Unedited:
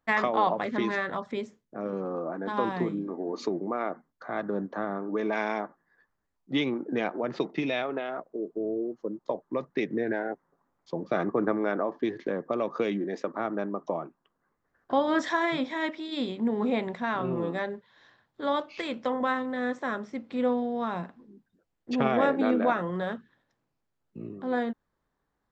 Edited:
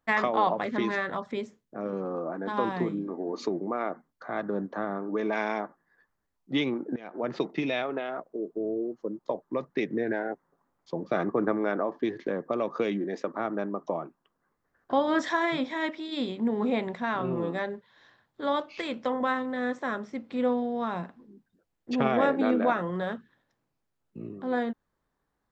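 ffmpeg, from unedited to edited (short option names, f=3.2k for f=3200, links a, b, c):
-filter_complex "[0:a]asplit=2[a][b];[a]atrim=end=6.96,asetpts=PTS-STARTPTS,afade=t=out:st=6.956:d=0.004:c=hsin:silence=0.112202[c];[b]atrim=start=6.96,asetpts=PTS-STARTPTS,afade=t=in:d=0.27:c=qua:silence=0.112202[d];[c][d]concat=n=2:v=0:a=1"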